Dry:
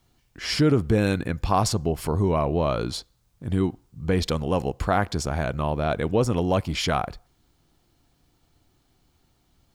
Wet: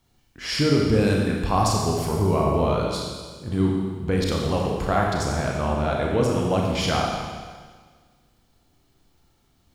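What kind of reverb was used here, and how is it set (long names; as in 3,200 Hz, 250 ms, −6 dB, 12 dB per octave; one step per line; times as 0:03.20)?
four-comb reverb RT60 1.6 s, combs from 28 ms, DRR −1.5 dB
level −2 dB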